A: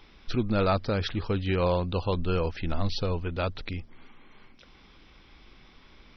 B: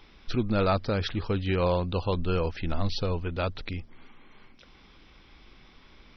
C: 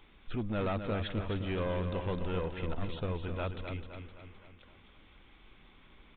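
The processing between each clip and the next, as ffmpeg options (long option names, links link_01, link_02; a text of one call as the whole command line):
ffmpeg -i in.wav -af anull out.wav
ffmpeg -i in.wav -filter_complex "[0:a]aeval=exprs='(tanh(15.8*val(0)+0.25)-tanh(0.25))/15.8':channel_layout=same,asplit=2[link_01][link_02];[link_02]aecho=0:1:258|516|774|1032|1290|1548:0.422|0.215|0.11|0.0559|0.0285|0.0145[link_03];[link_01][link_03]amix=inputs=2:normalize=0,aresample=8000,aresample=44100,volume=-4.5dB" out.wav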